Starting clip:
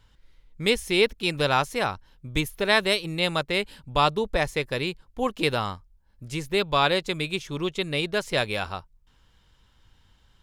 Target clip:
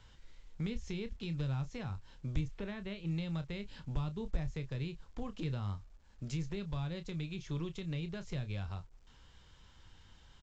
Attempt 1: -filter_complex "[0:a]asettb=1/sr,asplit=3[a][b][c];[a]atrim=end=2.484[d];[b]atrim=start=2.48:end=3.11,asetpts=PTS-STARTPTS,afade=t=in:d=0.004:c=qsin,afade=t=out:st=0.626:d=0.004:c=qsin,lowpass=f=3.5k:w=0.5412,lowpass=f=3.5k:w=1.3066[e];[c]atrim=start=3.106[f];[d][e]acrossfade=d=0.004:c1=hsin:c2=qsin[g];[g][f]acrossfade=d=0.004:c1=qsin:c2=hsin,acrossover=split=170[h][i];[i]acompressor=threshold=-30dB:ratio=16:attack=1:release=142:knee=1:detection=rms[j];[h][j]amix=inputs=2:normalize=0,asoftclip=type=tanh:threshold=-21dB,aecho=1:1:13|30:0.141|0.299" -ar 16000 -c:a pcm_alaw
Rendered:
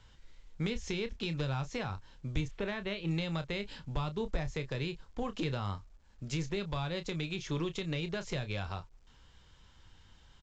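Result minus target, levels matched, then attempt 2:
compressor: peak gain reduction -9.5 dB
-filter_complex "[0:a]asettb=1/sr,asplit=3[a][b][c];[a]atrim=end=2.484[d];[b]atrim=start=2.48:end=3.11,asetpts=PTS-STARTPTS,afade=t=in:d=0.004:c=qsin,afade=t=out:st=0.626:d=0.004:c=qsin,lowpass=f=3.5k:w=0.5412,lowpass=f=3.5k:w=1.3066[e];[c]atrim=start=3.106[f];[d][e]acrossfade=d=0.004:c1=hsin:c2=qsin[g];[g][f]acrossfade=d=0.004:c1=qsin:c2=hsin,acrossover=split=170[h][i];[i]acompressor=threshold=-40dB:ratio=16:attack=1:release=142:knee=1:detection=rms[j];[h][j]amix=inputs=2:normalize=0,asoftclip=type=tanh:threshold=-21dB,aecho=1:1:13|30:0.141|0.299" -ar 16000 -c:a pcm_alaw

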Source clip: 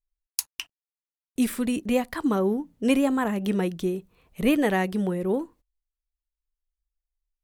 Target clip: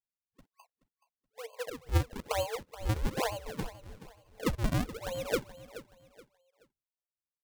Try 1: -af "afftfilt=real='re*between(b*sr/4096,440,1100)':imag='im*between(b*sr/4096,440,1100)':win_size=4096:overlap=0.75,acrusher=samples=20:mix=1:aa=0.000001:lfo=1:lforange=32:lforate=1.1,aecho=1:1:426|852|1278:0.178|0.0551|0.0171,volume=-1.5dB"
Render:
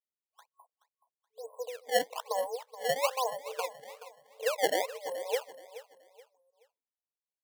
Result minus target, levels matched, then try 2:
decimation with a swept rate: distortion -11 dB
-af "afftfilt=real='re*between(b*sr/4096,440,1100)':imag='im*between(b*sr/4096,440,1100)':win_size=4096:overlap=0.75,acrusher=samples=58:mix=1:aa=0.000001:lfo=1:lforange=92.8:lforate=1.1,aecho=1:1:426|852|1278:0.178|0.0551|0.0171,volume=-1.5dB"

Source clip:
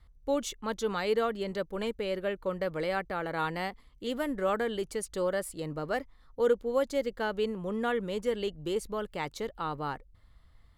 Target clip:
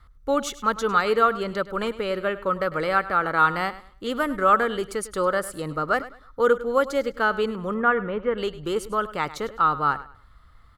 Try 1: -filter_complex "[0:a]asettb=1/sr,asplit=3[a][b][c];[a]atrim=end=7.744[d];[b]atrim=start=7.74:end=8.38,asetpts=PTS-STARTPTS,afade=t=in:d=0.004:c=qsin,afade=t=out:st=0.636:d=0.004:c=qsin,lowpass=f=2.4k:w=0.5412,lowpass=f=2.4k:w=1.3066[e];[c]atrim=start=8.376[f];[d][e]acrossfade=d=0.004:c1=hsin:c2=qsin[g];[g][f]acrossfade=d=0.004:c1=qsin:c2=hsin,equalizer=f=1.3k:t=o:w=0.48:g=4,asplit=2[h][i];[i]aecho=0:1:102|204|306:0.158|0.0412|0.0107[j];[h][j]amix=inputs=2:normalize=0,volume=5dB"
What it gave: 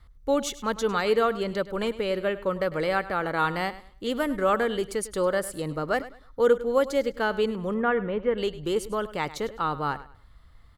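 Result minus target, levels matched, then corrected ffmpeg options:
1000 Hz band -3.5 dB
-filter_complex "[0:a]asettb=1/sr,asplit=3[a][b][c];[a]atrim=end=7.744[d];[b]atrim=start=7.74:end=8.38,asetpts=PTS-STARTPTS,afade=t=in:d=0.004:c=qsin,afade=t=out:st=0.636:d=0.004:c=qsin,lowpass=f=2.4k:w=0.5412,lowpass=f=2.4k:w=1.3066[e];[c]atrim=start=8.376[f];[d][e]acrossfade=d=0.004:c1=hsin:c2=qsin[g];[g][f]acrossfade=d=0.004:c1=qsin:c2=hsin,equalizer=f=1.3k:t=o:w=0.48:g=14.5,asplit=2[h][i];[i]aecho=0:1:102|204|306:0.158|0.0412|0.0107[j];[h][j]amix=inputs=2:normalize=0,volume=5dB"

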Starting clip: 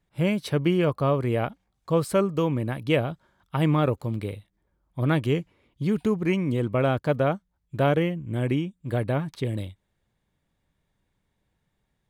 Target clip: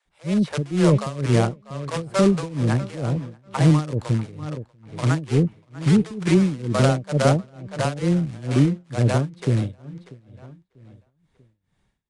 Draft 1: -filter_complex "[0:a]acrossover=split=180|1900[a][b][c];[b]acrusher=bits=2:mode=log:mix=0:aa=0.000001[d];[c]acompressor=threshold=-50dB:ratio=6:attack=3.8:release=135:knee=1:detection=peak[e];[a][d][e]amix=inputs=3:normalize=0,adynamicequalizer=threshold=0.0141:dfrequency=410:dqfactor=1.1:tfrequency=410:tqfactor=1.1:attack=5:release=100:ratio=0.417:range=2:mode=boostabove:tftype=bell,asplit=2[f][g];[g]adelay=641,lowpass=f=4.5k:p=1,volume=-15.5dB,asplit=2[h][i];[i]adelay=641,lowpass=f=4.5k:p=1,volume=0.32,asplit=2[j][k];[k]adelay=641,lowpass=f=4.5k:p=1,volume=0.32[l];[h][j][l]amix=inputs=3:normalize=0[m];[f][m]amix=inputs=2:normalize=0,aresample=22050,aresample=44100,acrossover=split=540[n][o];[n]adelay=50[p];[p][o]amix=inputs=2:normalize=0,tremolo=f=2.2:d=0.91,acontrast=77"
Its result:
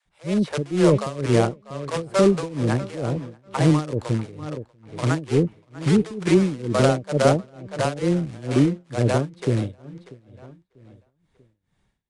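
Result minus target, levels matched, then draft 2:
500 Hz band +3.5 dB
-filter_complex "[0:a]acrossover=split=180|1900[a][b][c];[b]acrusher=bits=2:mode=log:mix=0:aa=0.000001[d];[c]acompressor=threshold=-50dB:ratio=6:attack=3.8:release=135:knee=1:detection=peak[e];[a][d][e]amix=inputs=3:normalize=0,adynamicequalizer=threshold=0.0141:dfrequency=150:dqfactor=1.1:tfrequency=150:tqfactor=1.1:attack=5:release=100:ratio=0.417:range=2:mode=boostabove:tftype=bell,asplit=2[f][g];[g]adelay=641,lowpass=f=4.5k:p=1,volume=-15.5dB,asplit=2[h][i];[i]adelay=641,lowpass=f=4.5k:p=1,volume=0.32,asplit=2[j][k];[k]adelay=641,lowpass=f=4.5k:p=1,volume=0.32[l];[h][j][l]amix=inputs=3:normalize=0[m];[f][m]amix=inputs=2:normalize=0,aresample=22050,aresample=44100,acrossover=split=540[n][o];[n]adelay=50[p];[p][o]amix=inputs=2:normalize=0,tremolo=f=2.2:d=0.91,acontrast=77"

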